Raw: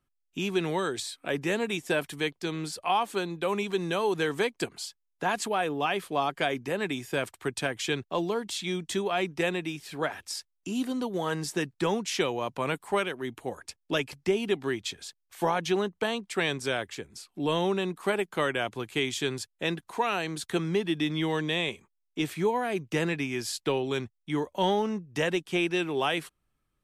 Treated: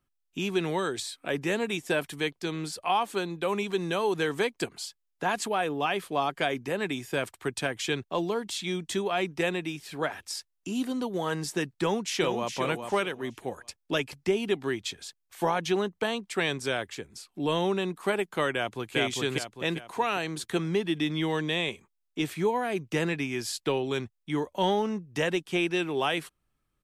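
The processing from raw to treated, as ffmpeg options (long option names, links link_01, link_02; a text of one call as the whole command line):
ffmpeg -i in.wav -filter_complex "[0:a]asplit=2[link_01][link_02];[link_02]afade=type=in:start_time=11.81:duration=0.01,afade=type=out:start_time=12.49:duration=0.01,aecho=0:1:410|820|1230:0.446684|0.111671|0.0279177[link_03];[link_01][link_03]amix=inputs=2:normalize=0,asplit=2[link_04][link_05];[link_05]afade=type=in:start_time=18.54:duration=0.01,afade=type=out:start_time=18.98:duration=0.01,aecho=0:1:400|800|1200|1600|2000:0.891251|0.3565|0.1426|0.0570401|0.022816[link_06];[link_04][link_06]amix=inputs=2:normalize=0" out.wav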